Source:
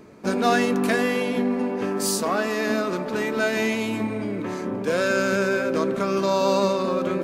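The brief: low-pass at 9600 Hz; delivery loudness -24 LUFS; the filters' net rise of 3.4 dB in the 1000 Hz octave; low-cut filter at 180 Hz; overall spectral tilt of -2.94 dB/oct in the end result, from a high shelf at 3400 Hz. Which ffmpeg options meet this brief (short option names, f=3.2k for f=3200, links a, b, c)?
-af "highpass=180,lowpass=9.6k,equalizer=f=1k:t=o:g=3.5,highshelf=f=3.4k:g=9,volume=-2.5dB"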